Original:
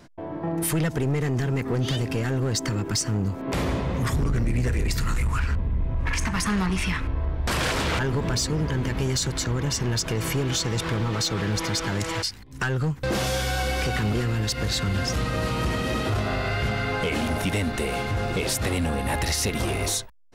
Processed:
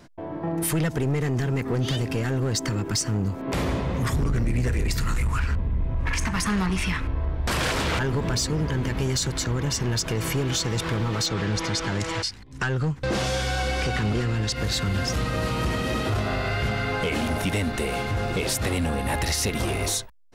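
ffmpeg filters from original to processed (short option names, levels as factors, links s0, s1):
-filter_complex "[0:a]asettb=1/sr,asplit=3[s0][s1][s2];[s0]atrim=end=11.264[s3];[s1]atrim=start=11.26:end=14.56,asetpts=PTS-STARTPTS,afade=t=in:d=0.004:c=qsin,afade=t=out:st=3.296:d=0.004:c=qsin,lowpass=8300[s4];[s2]atrim=start=14.556[s5];[s3][s4]acrossfade=d=0.004:c1=hsin:c2=qsin[s6];[s6][s5]acrossfade=d=0.004:c1=qsin:c2=hsin"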